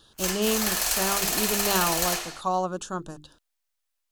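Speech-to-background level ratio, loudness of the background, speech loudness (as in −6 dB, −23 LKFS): −4.5 dB, −24.5 LKFS, −29.0 LKFS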